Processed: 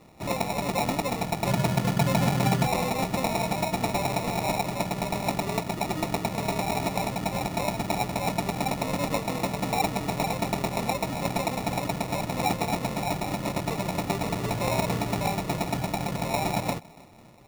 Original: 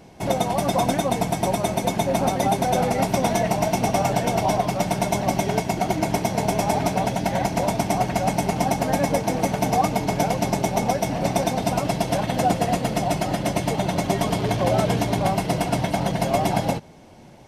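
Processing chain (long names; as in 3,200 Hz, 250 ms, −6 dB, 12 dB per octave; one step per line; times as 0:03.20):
0:01.46–0:02.67: parametric band 140 Hz +14 dB 0.81 octaves
on a send: tape delay 283 ms, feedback 49%, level −23 dB
on the sum: decimation without filtering 28×
level −6 dB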